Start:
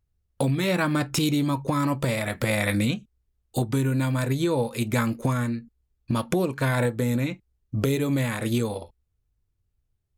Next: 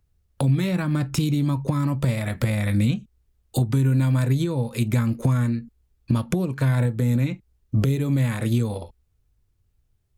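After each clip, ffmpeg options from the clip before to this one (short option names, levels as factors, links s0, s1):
-filter_complex "[0:a]acrossover=split=200[s0][s1];[s1]acompressor=threshold=0.0178:ratio=10[s2];[s0][s2]amix=inputs=2:normalize=0,volume=2.24"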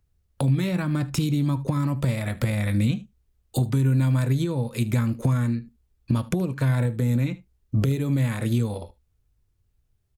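-af "aecho=1:1:76:0.106,volume=0.841"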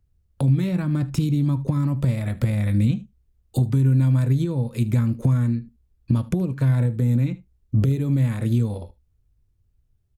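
-af "lowshelf=f=400:g=9,volume=0.562"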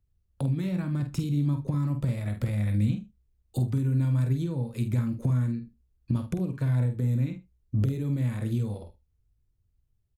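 -filter_complex "[0:a]asplit=2[s0][s1];[s1]adelay=48,volume=0.398[s2];[s0][s2]amix=inputs=2:normalize=0,volume=0.447"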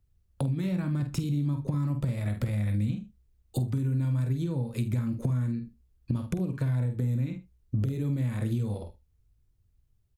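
-af "acompressor=threshold=0.0316:ratio=3,volume=1.5"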